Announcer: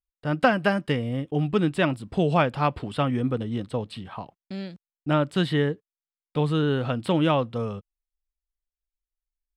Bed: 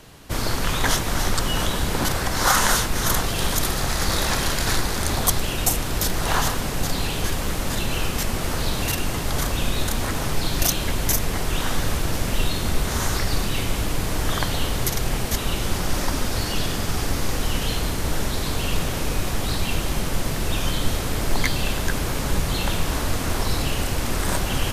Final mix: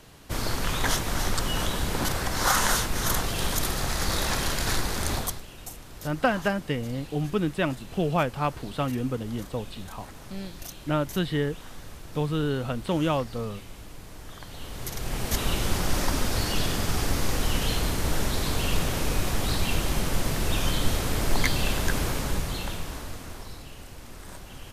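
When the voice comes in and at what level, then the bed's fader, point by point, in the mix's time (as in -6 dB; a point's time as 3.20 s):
5.80 s, -3.5 dB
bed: 5.16 s -4.5 dB
5.45 s -19.5 dB
14.40 s -19.5 dB
15.39 s -2 dB
22.03 s -2 dB
23.65 s -19.5 dB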